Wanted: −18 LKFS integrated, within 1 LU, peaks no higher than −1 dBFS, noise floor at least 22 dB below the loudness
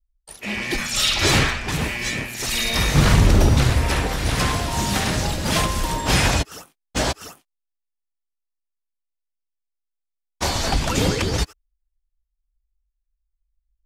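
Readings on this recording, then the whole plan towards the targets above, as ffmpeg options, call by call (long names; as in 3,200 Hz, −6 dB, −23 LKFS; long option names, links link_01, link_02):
integrated loudness −20.5 LKFS; sample peak −4.0 dBFS; target loudness −18.0 LKFS
→ -af "volume=2.5dB"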